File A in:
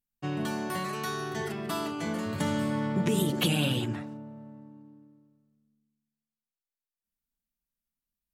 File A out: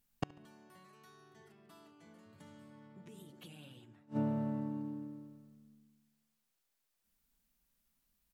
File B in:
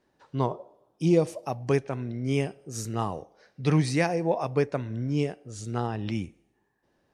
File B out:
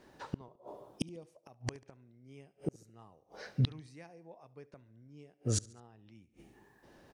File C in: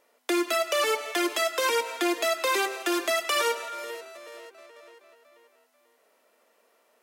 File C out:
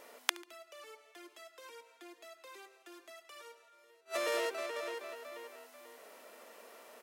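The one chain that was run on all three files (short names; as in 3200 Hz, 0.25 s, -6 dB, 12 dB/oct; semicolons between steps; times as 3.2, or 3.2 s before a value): flipped gate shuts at -30 dBFS, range -38 dB; feedback echo 71 ms, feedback 50%, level -23 dB; gain +10.5 dB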